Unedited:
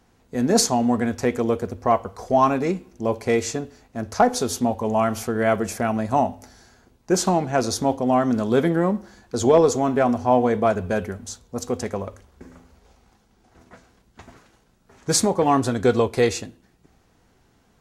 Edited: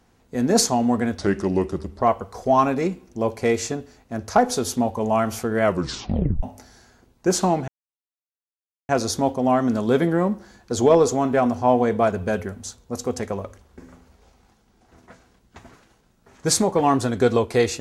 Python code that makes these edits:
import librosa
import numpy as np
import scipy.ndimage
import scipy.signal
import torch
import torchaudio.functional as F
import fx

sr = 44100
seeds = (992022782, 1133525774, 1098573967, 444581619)

y = fx.edit(x, sr, fx.speed_span(start_s=1.18, length_s=0.68, speed=0.81),
    fx.tape_stop(start_s=5.47, length_s=0.8),
    fx.insert_silence(at_s=7.52, length_s=1.21), tone=tone)